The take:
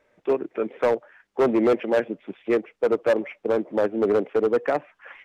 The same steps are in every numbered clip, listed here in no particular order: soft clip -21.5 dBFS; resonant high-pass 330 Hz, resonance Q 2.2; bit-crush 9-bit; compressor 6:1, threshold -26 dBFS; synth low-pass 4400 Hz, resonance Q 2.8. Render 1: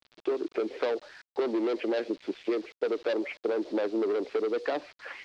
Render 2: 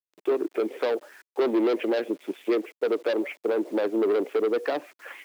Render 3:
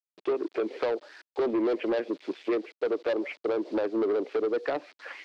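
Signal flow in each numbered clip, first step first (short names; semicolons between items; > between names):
soft clip > resonant high-pass > compressor > bit-crush > synth low-pass; soft clip > synth low-pass > bit-crush > compressor > resonant high-pass; bit-crush > compressor > resonant high-pass > soft clip > synth low-pass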